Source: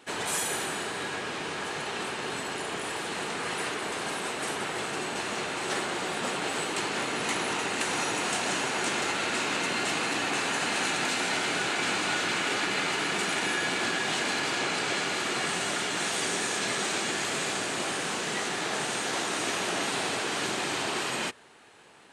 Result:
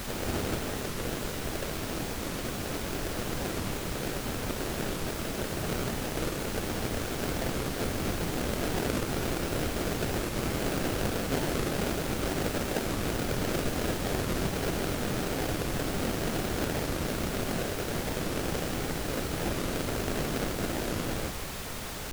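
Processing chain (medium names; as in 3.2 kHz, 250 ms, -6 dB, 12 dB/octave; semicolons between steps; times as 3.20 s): random holes in the spectrogram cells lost 23%; high-pass 470 Hz 12 dB/octave; sample-rate reducer 1 kHz, jitter 20%; added noise pink -37 dBFS; warped record 45 rpm, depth 250 cents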